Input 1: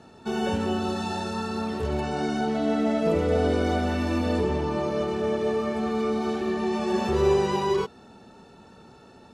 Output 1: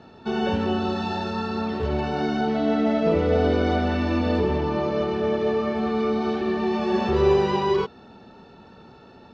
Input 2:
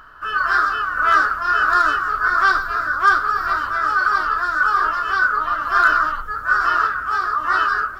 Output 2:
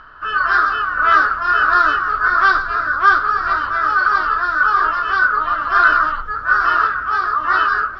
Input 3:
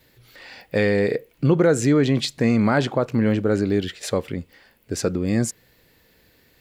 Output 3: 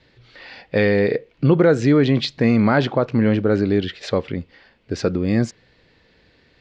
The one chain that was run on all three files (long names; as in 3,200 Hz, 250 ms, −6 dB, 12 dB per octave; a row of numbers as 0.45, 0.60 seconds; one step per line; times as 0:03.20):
low-pass filter 4,900 Hz 24 dB per octave
level +2.5 dB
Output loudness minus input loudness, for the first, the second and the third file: +2.5, +2.5, +2.5 LU